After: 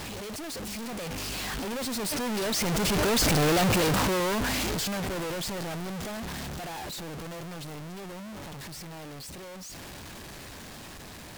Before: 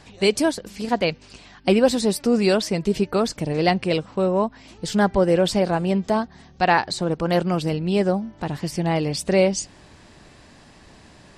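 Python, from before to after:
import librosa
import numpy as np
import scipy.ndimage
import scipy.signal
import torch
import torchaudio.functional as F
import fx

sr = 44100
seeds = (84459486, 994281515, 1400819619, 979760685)

y = np.sign(x) * np.sqrt(np.mean(np.square(x)))
y = fx.doppler_pass(y, sr, speed_mps=11, closest_m=6.4, pass_at_s=3.49)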